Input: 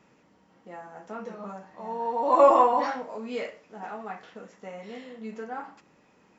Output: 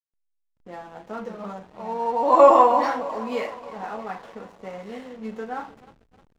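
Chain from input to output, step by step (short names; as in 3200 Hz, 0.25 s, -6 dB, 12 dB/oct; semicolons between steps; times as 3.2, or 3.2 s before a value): thinning echo 0.309 s, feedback 67%, high-pass 250 Hz, level -16.5 dB; backlash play -45 dBFS; gain +4.5 dB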